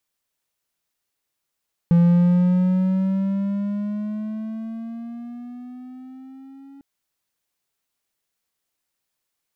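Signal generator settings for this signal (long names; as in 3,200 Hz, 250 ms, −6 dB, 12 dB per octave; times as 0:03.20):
pitch glide with a swell triangle, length 4.90 s, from 170 Hz, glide +8.5 semitones, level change −30 dB, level −9 dB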